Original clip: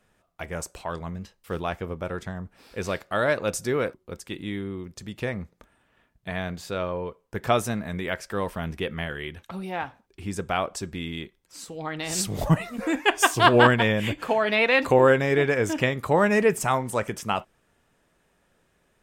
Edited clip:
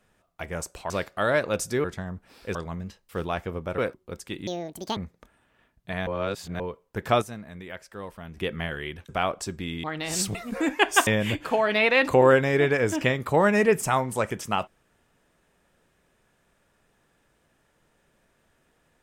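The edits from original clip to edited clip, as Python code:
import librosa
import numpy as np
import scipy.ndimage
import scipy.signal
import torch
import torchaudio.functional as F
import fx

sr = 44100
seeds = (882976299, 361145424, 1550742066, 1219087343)

y = fx.edit(x, sr, fx.swap(start_s=0.9, length_s=1.23, other_s=2.84, other_length_s=0.94),
    fx.speed_span(start_s=4.47, length_s=0.88, speed=1.77),
    fx.reverse_span(start_s=6.45, length_s=0.53),
    fx.clip_gain(start_s=7.6, length_s=1.15, db=-10.0),
    fx.cut(start_s=9.47, length_s=0.96),
    fx.cut(start_s=11.18, length_s=0.65),
    fx.cut(start_s=12.34, length_s=0.27),
    fx.cut(start_s=13.33, length_s=0.51), tone=tone)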